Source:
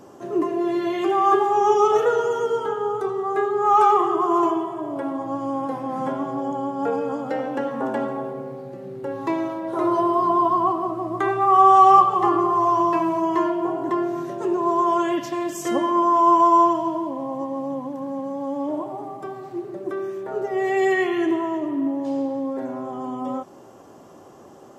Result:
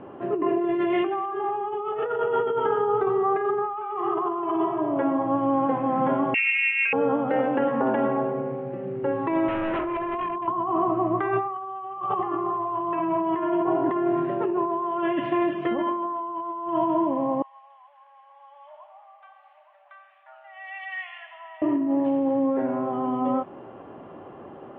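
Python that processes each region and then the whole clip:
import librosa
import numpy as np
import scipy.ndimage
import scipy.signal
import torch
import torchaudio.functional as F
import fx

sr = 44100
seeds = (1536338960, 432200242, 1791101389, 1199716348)

y = fx.chain(x, sr, fx.highpass(hz=50.0, slope=12),
    fx.freq_invert(carrier_hz=3000), at=(6.34, 6.93))
y = fx.chain(y, sr, fx.over_compress(threshold_db=-25.0, ratio=-0.5),
    fx.overload_stage(gain_db=28.5), at=(9.48, 10.48))
y = fx.chain(y, sr, fx.brickwall_highpass(low_hz=570.0),
    fx.differentiator(),
    fx.echo_single(ms=871, db=-11.5), at=(17.42, 21.62))
y = scipy.signal.sosfilt(scipy.signal.butter(8, 3000.0, 'lowpass', fs=sr, output='sos'), y)
y = fx.over_compress(y, sr, threshold_db=-25.0, ratio=-1.0)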